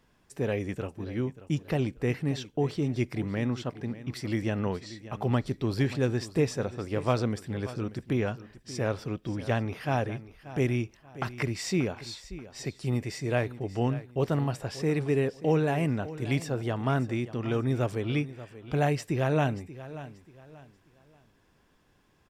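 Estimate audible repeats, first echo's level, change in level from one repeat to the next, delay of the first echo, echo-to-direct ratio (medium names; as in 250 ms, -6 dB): 2, -15.5 dB, -10.0 dB, 584 ms, -15.0 dB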